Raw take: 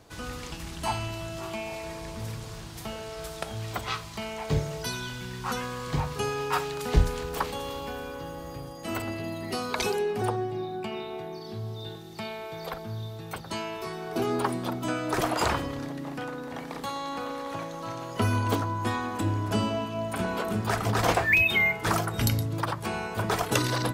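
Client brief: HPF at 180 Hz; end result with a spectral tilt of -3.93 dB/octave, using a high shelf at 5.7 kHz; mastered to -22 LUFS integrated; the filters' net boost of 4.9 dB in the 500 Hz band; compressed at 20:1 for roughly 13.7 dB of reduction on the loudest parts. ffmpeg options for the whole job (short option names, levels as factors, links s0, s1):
-af "highpass=180,equalizer=f=500:t=o:g=6.5,highshelf=f=5700:g=4.5,acompressor=threshold=0.0316:ratio=20,volume=4.47"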